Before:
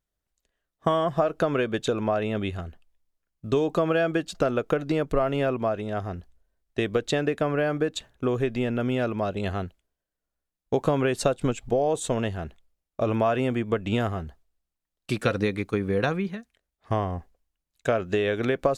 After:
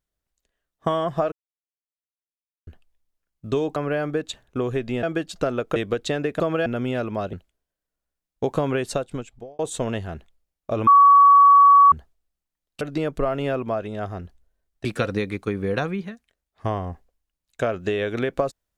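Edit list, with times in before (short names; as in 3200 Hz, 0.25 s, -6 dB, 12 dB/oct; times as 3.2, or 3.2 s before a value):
1.32–2.67 mute
3.76–4.02 swap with 7.43–8.7
4.75–6.79 move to 15.11
9.37–9.63 cut
11.06–11.89 fade out
13.17–14.22 bleep 1130 Hz -8.5 dBFS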